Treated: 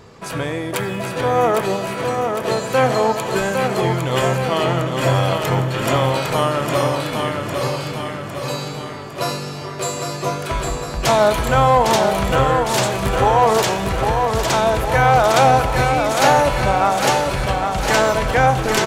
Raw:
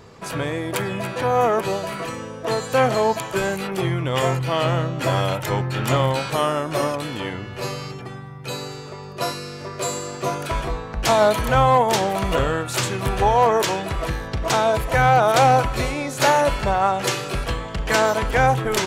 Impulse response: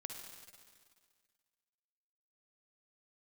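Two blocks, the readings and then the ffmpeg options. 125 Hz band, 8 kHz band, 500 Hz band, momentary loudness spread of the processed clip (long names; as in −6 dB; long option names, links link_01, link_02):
+3.0 dB, +3.5 dB, +3.5 dB, 11 LU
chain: -filter_complex "[0:a]aecho=1:1:806|1612|2418|3224|4030|4836|5642:0.562|0.304|0.164|0.0885|0.0478|0.0258|0.0139,asplit=2[link_01][link_02];[1:a]atrim=start_sample=2205,asetrate=35280,aresample=44100[link_03];[link_02][link_03]afir=irnorm=-1:irlink=0,volume=-5dB[link_04];[link_01][link_04]amix=inputs=2:normalize=0,volume=-1dB"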